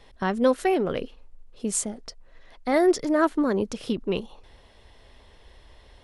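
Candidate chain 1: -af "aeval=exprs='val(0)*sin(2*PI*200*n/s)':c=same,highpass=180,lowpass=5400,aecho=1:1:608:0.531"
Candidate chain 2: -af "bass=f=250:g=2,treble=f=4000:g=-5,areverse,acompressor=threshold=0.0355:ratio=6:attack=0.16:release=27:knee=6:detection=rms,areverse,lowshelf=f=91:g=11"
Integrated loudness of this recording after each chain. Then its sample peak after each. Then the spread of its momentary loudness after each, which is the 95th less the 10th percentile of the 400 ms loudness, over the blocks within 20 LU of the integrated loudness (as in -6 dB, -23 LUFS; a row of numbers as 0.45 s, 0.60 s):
-29.0 LUFS, -35.0 LUFS; -10.0 dBFS, -22.5 dBFS; 15 LU, 16 LU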